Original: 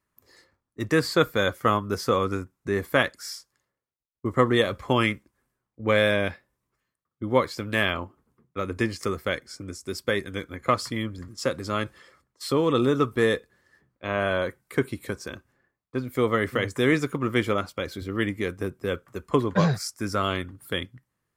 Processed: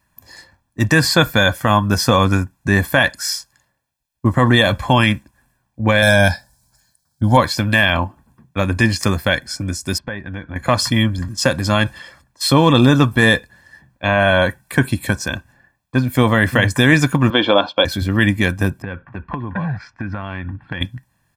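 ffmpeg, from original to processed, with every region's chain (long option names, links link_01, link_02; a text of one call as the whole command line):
ffmpeg -i in.wav -filter_complex "[0:a]asettb=1/sr,asplit=3[link_01][link_02][link_03];[link_01]atrim=end=6.024[link_04];[link_02]atrim=start=6.02:end=7.37,asetpts=PTS-STARTPTS,afade=type=in:duration=0.004:curve=qsin,afade=type=out:start_time=1.346:duration=0.004:curve=qsin,highshelf=frequency=3600:width_type=q:width=3:gain=9,aecho=1:1:1.3:0.57,atrim=end_sample=59535[link_05];[link_03]atrim=start=7.366[link_06];[link_04][link_05]acrossfade=duration=0.004:curve1=hsin:curve2=qsin[link_07];[link_07][link_06]acrossfade=duration=0.004:curve1=qsin:curve2=hsin,asettb=1/sr,asplit=3[link_08][link_09][link_10];[link_08]atrim=end=9.984[link_11];[link_09]atrim=start=9.98:end=10.56,asetpts=PTS-STARTPTS,afade=type=in:duration=0.004:curve=qsin,afade=type=out:start_time=0.576:duration=0.004:curve=qsin,acompressor=threshold=-40dB:ratio=2.5:attack=3.2:release=140:knee=1:detection=peak,lowpass=1900[link_12];[link_10]atrim=start=10.556[link_13];[link_11][link_12]acrossfade=duration=0.004:curve1=hsin:curve2=qsin[link_14];[link_14][link_13]acrossfade=duration=0.004:curve1=qsin:curve2=hsin,asettb=1/sr,asplit=3[link_15][link_16][link_17];[link_15]atrim=end=17.304[link_18];[link_16]atrim=start=17.3:end=17.85,asetpts=PTS-STARTPTS,afade=type=in:duration=0.004:curve=qsin,afade=type=out:start_time=0.546:duration=0.004:curve=qsin,highpass=300,equalizer=frequency=310:width_type=q:width=4:gain=7,equalizer=frequency=510:width_type=q:width=4:gain=7,equalizer=frequency=730:width_type=q:width=4:gain=3,equalizer=frequency=1000:width_type=q:width=4:gain=5,equalizer=frequency=2000:width_type=q:width=4:gain=-7,equalizer=frequency=3500:width_type=q:width=4:gain=9,lowpass=frequency=3900:width=0.5412,lowpass=frequency=3900:width=1.3066,bandreject=frequency=1900:width=14[link_19];[link_17]atrim=start=17.846[link_20];[link_18][link_19]acrossfade=duration=0.004:curve1=hsin:curve2=qsin[link_21];[link_21][link_20]acrossfade=duration=0.004:curve1=qsin:curve2=hsin,asettb=1/sr,asplit=3[link_22][link_23][link_24];[link_22]atrim=end=18.824[link_25];[link_23]atrim=start=18.82:end=20.81,asetpts=PTS-STARTPTS,afade=type=in:duration=0.004:curve=qsin,afade=type=out:start_time=1.986:duration=0.004:curve=qsin,lowpass=frequency=2400:width=0.5412,lowpass=frequency=2400:width=1.3066,equalizer=frequency=610:width_type=o:width=0.31:gain=-6,acompressor=threshold=-35dB:ratio=6:attack=3.2:release=140:knee=1:detection=peak[link_26];[link_24]atrim=start=20.806[link_27];[link_25][link_26]acrossfade=duration=0.004:curve1=hsin:curve2=qsin[link_28];[link_28][link_27]acrossfade=duration=0.004:curve1=qsin:curve2=hsin,aecho=1:1:1.2:0.74,alimiter=level_in=13.5dB:limit=-1dB:release=50:level=0:latency=1,volume=-1dB" out.wav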